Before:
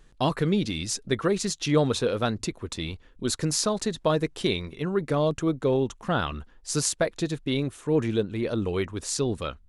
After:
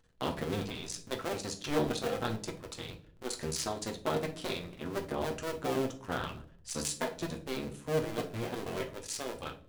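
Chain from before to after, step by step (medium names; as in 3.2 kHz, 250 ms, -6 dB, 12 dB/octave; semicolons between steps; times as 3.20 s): cycle switcher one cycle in 2, muted; bass shelf 190 Hz -5.5 dB; reverberation, pre-delay 8 ms, DRR 3 dB; trim -7.5 dB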